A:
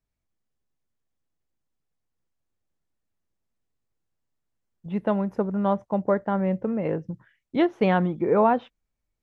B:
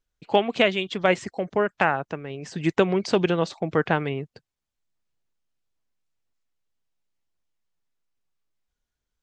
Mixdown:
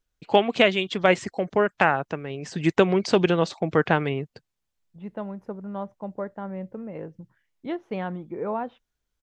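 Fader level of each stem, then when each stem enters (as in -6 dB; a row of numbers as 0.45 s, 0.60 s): -9.5 dB, +1.5 dB; 0.10 s, 0.00 s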